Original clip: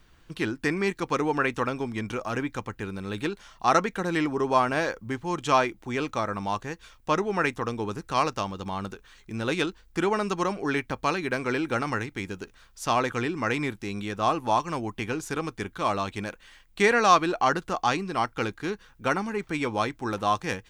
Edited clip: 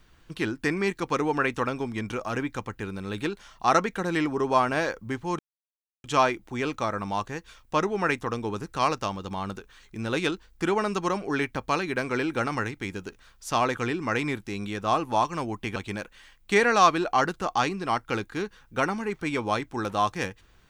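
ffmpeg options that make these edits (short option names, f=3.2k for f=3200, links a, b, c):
-filter_complex "[0:a]asplit=3[a][b][c];[a]atrim=end=5.39,asetpts=PTS-STARTPTS,afade=t=out:st=5.386:d=0.004:c=hsin,apad=pad_dur=0.65[d];[b]atrim=start=5.39:end=15.112,asetpts=PTS-STARTPTS,afade=t=in:d=0.004:c=hsin[e];[c]atrim=start=16.038[f];[d][e]concat=n=2:v=0:a=1[g];[g][f]acrossfade=d=0.004:c1=hsin:c2=hsin"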